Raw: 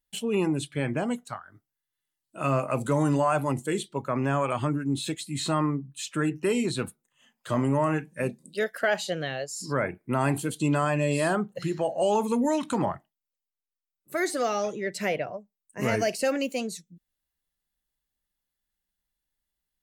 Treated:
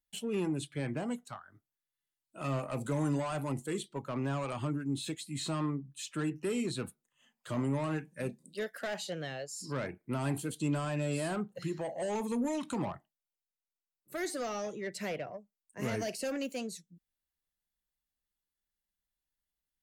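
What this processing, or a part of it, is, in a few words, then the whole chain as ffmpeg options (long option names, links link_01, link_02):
one-band saturation: -filter_complex "[0:a]acrossover=split=360|3900[link_01][link_02][link_03];[link_02]asoftclip=type=tanh:threshold=-28dB[link_04];[link_01][link_04][link_03]amix=inputs=3:normalize=0,volume=-6.5dB"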